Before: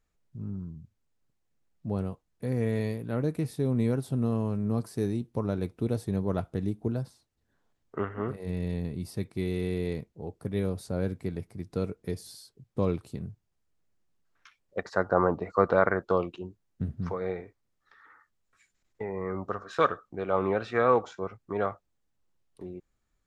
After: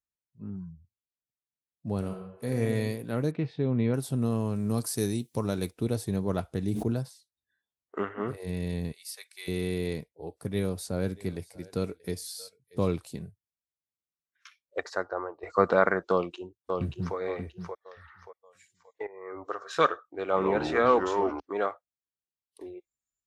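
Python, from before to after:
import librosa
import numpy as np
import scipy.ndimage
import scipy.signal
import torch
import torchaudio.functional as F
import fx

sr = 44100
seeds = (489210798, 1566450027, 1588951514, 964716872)

y = fx.reverb_throw(x, sr, start_s=1.98, length_s=0.63, rt60_s=1.2, drr_db=3.0)
y = fx.lowpass(y, sr, hz=3400.0, slope=24, at=(3.31, 3.94))
y = fx.high_shelf(y, sr, hz=3500.0, db=9.0, at=(4.56, 5.71))
y = fx.sustainer(y, sr, db_per_s=39.0, at=(6.62, 7.03))
y = fx.highpass(y, sr, hz=1300.0, slope=12, at=(8.92, 9.48))
y = fx.echo_single(y, sr, ms=634, db=-19.5, at=(10.39, 12.88))
y = fx.echo_throw(y, sr, start_s=16.11, length_s=1.05, ms=580, feedback_pct=35, wet_db=-5.0)
y = fx.echo_pitch(y, sr, ms=115, semitones=-4, count=2, db_per_echo=-6.0, at=(20.24, 21.4))
y = fx.edit(y, sr, fx.fade_out_to(start_s=14.8, length_s=0.63, curve='qua', floor_db=-14.5),
    fx.fade_in_from(start_s=19.07, length_s=0.57, floor_db=-16.5), tone=tone)
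y = fx.noise_reduce_blind(y, sr, reduce_db=22)
y = scipy.signal.sosfilt(scipy.signal.butter(2, 45.0, 'highpass', fs=sr, output='sos'), y)
y = fx.high_shelf(y, sr, hz=3000.0, db=9.0)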